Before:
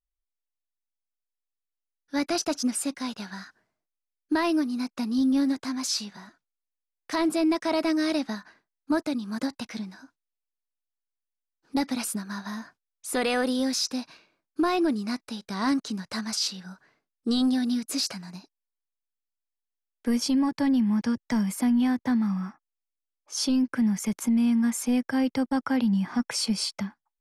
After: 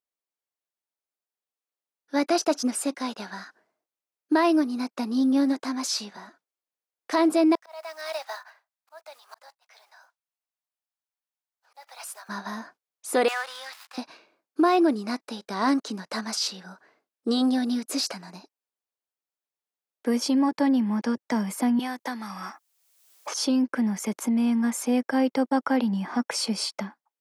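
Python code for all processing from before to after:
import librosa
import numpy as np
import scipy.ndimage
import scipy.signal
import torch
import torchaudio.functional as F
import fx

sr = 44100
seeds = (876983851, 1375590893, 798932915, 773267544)

y = fx.chain(x, sr, fx.block_float(bits=5),
    fx.steep_highpass(hz=630.0, slope=36),
    fx.auto_swell(attack_ms=712.0), at=(7.55, 12.29))
y = fx.chain(y, sr, fx.dead_time(dead_ms=0.1),
    fx.highpass(hz=980.0, slope=24),
    fx.high_shelf(hz=7400.0, db=-10.0), at=(13.28, 13.98))
y = fx.chain(y, sr, fx.highpass(hz=800.0, slope=6),
    fx.high_shelf(hz=3900.0, db=9.5),
    fx.band_squash(depth_pct=100), at=(21.79, 23.34))
y = scipy.signal.sosfilt(scipy.signal.butter(2, 510.0, 'highpass', fs=sr, output='sos'), y)
y = fx.tilt_shelf(y, sr, db=7.5, hz=740.0)
y = F.gain(torch.from_numpy(y), 7.0).numpy()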